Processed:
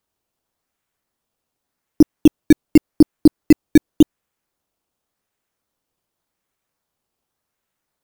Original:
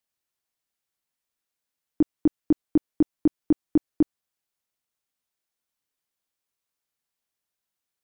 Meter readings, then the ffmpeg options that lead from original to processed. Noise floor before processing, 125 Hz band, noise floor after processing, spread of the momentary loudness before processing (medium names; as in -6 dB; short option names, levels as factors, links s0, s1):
under -85 dBFS, +11.5 dB, -80 dBFS, 3 LU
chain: -filter_complex "[0:a]lowshelf=f=410:g=3.5,asplit=2[s0][s1];[s1]acrusher=samples=15:mix=1:aa=0.000001:lfo=1:lforange=15:lforate=0.88,volume=0.708[s2];[s0][s2]amix=inputs=2:normalize=0,volume=1.5"